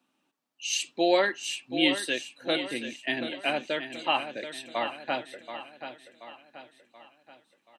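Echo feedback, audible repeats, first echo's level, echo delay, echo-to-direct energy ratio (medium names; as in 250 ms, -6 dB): 46%, 4, -10.0 dB, 730 ms, -9.0 dB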